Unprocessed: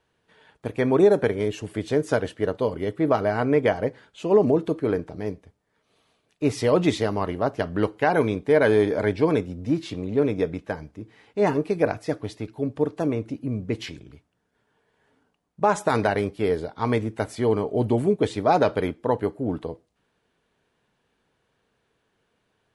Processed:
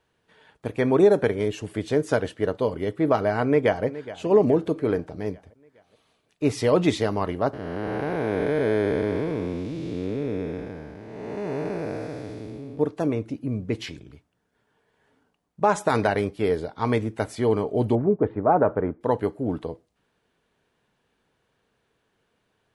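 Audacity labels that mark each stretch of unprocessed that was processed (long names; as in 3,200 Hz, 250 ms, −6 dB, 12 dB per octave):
3.450000	3.850000	delay throw 420 ms, feedback 55%, level −15.5 dB
7.530000	12.790000	spectrum smeared in time width 498 ms
17.950000	19.010000	low-pass filter 1,500 Hz 24 dB per octave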